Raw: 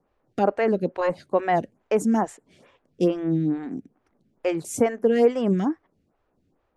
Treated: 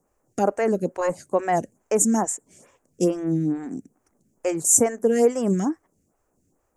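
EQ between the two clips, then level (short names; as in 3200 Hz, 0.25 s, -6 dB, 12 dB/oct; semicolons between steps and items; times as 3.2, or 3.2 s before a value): resonant high shelf 5200 Hz +12 dB, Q 3; 0.0 dB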